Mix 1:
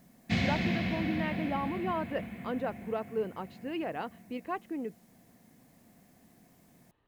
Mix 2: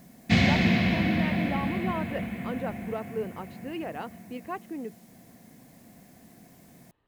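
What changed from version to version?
background +8.0 dB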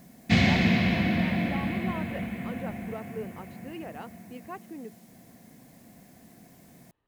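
speech -5.0 dB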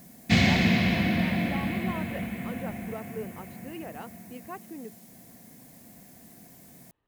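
background: add high shelf 6200 Hz +8.5 dB

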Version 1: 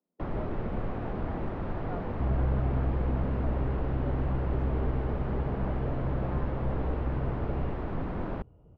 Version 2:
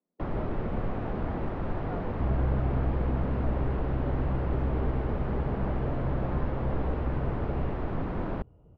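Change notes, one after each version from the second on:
reverb: on, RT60 1.5 s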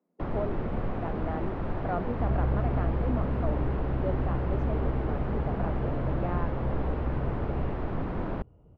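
speech +10.0 dB

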